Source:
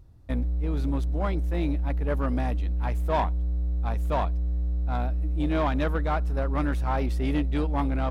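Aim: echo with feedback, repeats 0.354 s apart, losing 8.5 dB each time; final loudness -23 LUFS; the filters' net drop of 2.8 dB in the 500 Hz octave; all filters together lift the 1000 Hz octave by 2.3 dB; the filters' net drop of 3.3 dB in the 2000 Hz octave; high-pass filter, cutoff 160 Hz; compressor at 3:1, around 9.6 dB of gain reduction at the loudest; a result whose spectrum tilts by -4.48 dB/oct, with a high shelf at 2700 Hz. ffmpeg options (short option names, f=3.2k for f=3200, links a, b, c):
-af "highpass=160,equalizer=f=500:t=o:g=-5.5,equalizer=f=1k:t=o:g=6.5,equalizer=f=2k:t=o:g=-4.5,highshelf=f=2.7k:g=-6.5,acompressor=threshold=-33dB:ratio=3,aecho=1:1:354|708|1062|1416:0.376|0.143|0.0543|0.0206,volume=14dB"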